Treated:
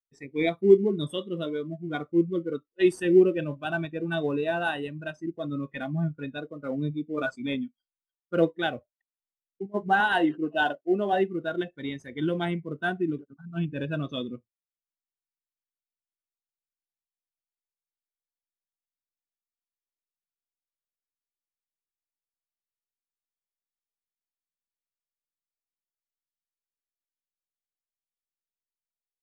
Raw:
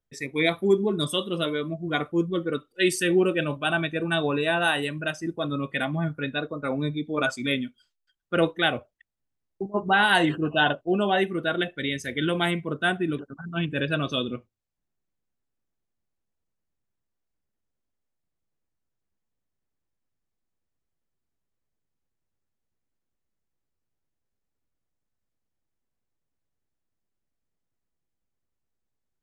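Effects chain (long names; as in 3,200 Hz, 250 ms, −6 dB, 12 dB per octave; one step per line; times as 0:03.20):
0:10.00–0:11.13: high-pass filter 220 Hz 12 dB per octave
in parallel at −11 dB: sample-rate reduction 2,500 Hz, jitter 20%
on the sum: every bin expanded away from the loudest bin 1.5 to 1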